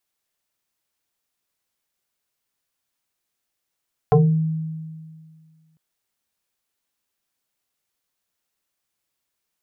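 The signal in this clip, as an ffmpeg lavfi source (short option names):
-f lavfi -i "aevalsrc='0.335*pow(10,-3*t/2)*sin(2*PI*159*t+2.5*pow(10,-3*t/0.37)*sin(2*PI*1.85*159*t))':d=1.65:s=44100"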